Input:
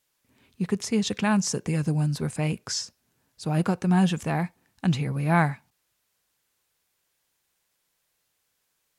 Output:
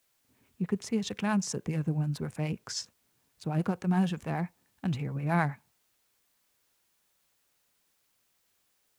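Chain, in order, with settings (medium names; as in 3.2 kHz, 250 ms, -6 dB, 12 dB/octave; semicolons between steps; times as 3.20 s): local Wiener filter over 9 samples; harmonic tremolo 9.5 Hz, depth 50%, crossover 530 Hz; added noise white -70 dBFS; trim -3.5 dB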